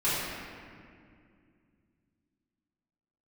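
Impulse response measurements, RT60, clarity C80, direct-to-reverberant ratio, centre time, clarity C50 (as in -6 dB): 2.3 s, -0.5 dB, -12.5 dB, 0.139 s, -3.0 dB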